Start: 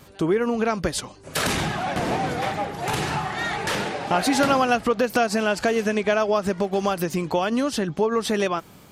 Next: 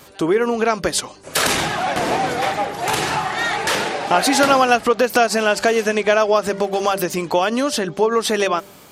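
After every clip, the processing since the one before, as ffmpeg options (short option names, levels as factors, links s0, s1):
-af "bass=f=250:g=-9,treble=f=4000:g=2,bandreject=f=197.4:t=h:w=4,bandreject=f=394.8:t=h:w=4,bandreject=f=592.2:t=h:w=4,volume=2"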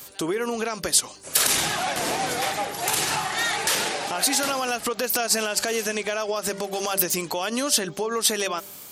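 -af "alimiter=limit=0.251:level=0:latency=1:release=81,crystalizer=i=3.5:c=0,volume=0.473"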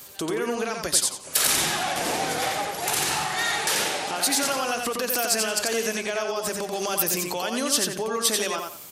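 -af "aecho=1:1:88|176|264:0.631|0.158|0.0394,volume=0.794"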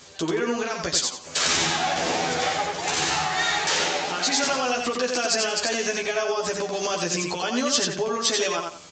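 -filter_complex "[0:a]asplit=2[s0][s1];[s1]adelay=12,volume=0.75[s2];[s0][s2]amix=inputs=2:normalize=0" -ar 16000 -c:a pcm_mulaw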